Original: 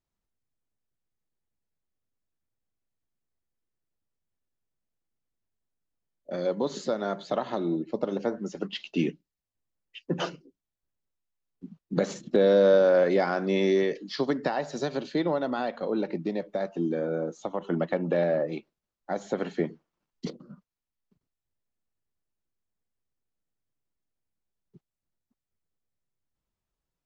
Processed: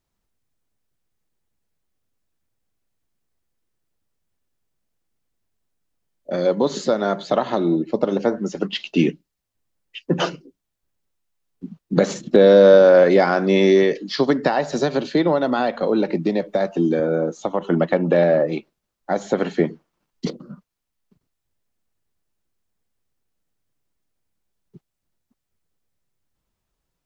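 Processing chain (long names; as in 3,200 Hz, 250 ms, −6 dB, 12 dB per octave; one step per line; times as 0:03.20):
0:14.72–0:17.00: multiband upward and downward compressor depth 40%
level +9 dB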